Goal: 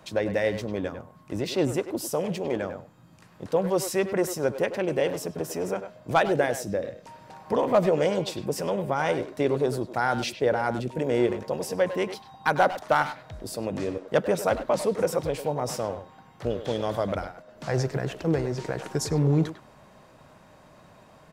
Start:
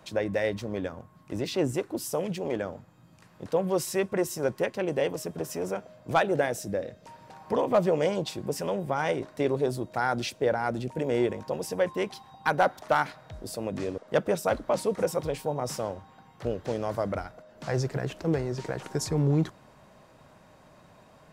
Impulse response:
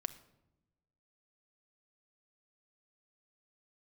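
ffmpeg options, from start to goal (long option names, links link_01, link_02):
-filter_complex "[0:a]asettb=1/sr,asplit=3[link_01][link_02][link_03];[link_01]atrim=end=16.504[link_04];[link_02]atrim=start=16.5:end=17.16,asetpts=PTS-STARTPTS,afade=type=in:duration=0.004:curve=qsin,afade=type=out:start_time=0.656:duration=0.004:curve=qsin,equalizer=frequency=3400:width=7:gain=15[link_05];[link_03]atrim=start=17.156[link_06];[link_04][link_05]acrossfade=duration=0.004:curve1=hsin:curve2=qsin[link_07];[link_07][link_06]acrossfade=duration=0.004:curve1=qsin:curve2=hsin,asplit=2[link_08][link_09];[link_09]adelay=100,highpass=300,lowpass=3400,asoftclip=type=hard:threshold=-22.5dB,volume=-9dB[link_10];[link_08][link_10]amix=inputs=2:normalize=0,volume=2dB"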